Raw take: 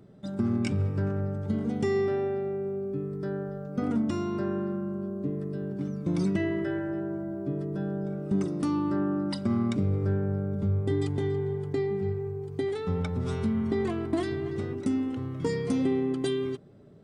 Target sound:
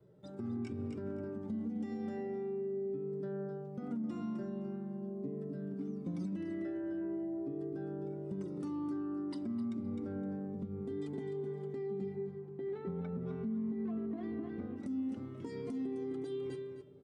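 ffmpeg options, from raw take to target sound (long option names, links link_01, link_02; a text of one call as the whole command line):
ffmpeg -i in.wav -filter_complex "[0:a]highpass=frequency=160:poles=1,adynamicequalizer=threshold=0.00794:dfrequency=230:dqfactor=2.6:tfrequency=230:tqfactor=2.6:attack=5:release=100:ratio=0.375:range=3:mode=boostabove:tftype=bell,asettb=1/sr,asplit=3[link_01][link_02][link_03];[link_01]atrim=end=12.154[link_04];[link_02]atrim=start=12.15:end=14.76,asetpts=PTS-STARTPTS,afade=type=in:duration=0.004:curve=qsin,afade=type=out:start_time=2.606:duration=0.004:curve=qsin,lowpass=2200[link_05];[link_03]atrim=start=14.756[link_06];[link_04][link_05]acrossfade=duration=0.004:curve1=hsin:curve2=qsin[link_07];[link_07][link_06]acrossfade=duration=0.004:curve1=qsin:curve2=hsin,aecho=1:1:258|516:0.376|0.0564,flanger=delay=2:depth=3.8:regen=-23:speed=0.12:shape=triangular,acompressor=threshold=-31dB:ratio=4,bandreject=frequency=50:width_type=h:width=6,bandreject=frequency=100:width_type=h:width=6,bandreject=frequency=150:width_type=h:width=6,bandreject=frequency=200:width_type=h:width=6,bandreject=frequency=250:width_type=h:width=6,bandreject=frequency=300:width_type=h:width=6,bandreject=frequency=350:width_type=h:width=6,alimiter=level_in=5dB:limit=-24dB:level=0:latency=1:release=155,volume=-5dB,tiltshelf=frequency=710:gain=4.5,volume=-5dB" out.wav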